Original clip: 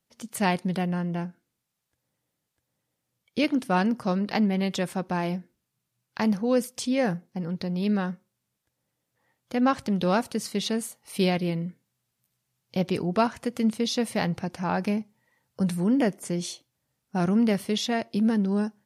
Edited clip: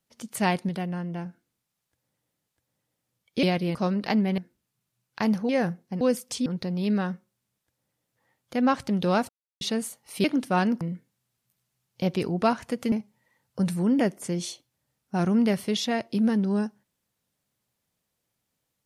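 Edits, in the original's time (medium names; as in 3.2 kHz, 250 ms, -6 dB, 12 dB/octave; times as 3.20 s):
0.69–1.26 s: gain -3.5 dB
3.43–4.00 s: swap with 11.23–11.55 s
4.63–5.37 s: delete
6.48–6.93 s: move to 7.45 s
10.28–10.60 s: mute
13.66–14.93 s: delete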